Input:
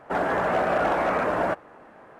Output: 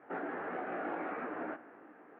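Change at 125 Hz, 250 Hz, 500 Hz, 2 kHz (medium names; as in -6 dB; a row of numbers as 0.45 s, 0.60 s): -20.5 dB, -10.5 dB, -16.5 dB, -14.0 dB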